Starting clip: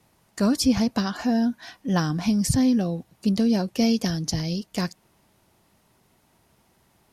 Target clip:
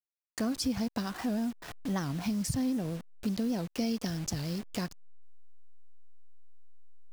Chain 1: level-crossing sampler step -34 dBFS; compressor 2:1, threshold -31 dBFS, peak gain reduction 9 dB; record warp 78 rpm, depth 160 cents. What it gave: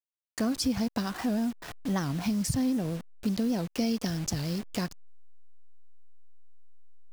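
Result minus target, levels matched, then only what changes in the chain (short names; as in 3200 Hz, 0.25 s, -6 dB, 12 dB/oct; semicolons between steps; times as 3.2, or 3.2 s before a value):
compressor: peak gain reduction -3 dB
change: compressor 2:1, threshold -37 dBFS, peak gain reduction 12 dB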